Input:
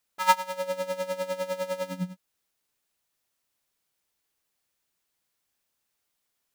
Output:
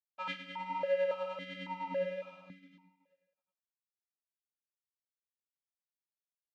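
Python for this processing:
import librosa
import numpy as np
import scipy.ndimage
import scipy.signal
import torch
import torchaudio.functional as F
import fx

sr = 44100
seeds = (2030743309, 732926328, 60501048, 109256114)

y = fx.bin_compress(x, sr, power=0.6)
y = np.repeat(scipy.signal.resample_poly(y, 1, 2), 2)[:len(y)]
y = fx.air_absorb(y, sr, metres=100.0)
y = fx.echo_multitap(y, sr, ms=(48, 261, 281, 310, 461, 720), db=(-12.0, -15.0, -18.0, -8.5, -10.5, -15.5))
y = fx.chorus_voices(y, sr, voices=2, hz=1.2, base_ms=25, depth_ms=3.0, mix_pct=30)
y = np.sign(y) * np.maximum(np.abs(y) - 10.0 ** (-49.0 / 20.0), 0.0)
y = fx.echo_feedback(y, sr, ms=374, feedback_pct=19, wet_db=-16.0)
y = fx.vowel_held(y, sr, hz=3.6)
y = F.gain(torch.from_numpy(y), 4.5).numpy()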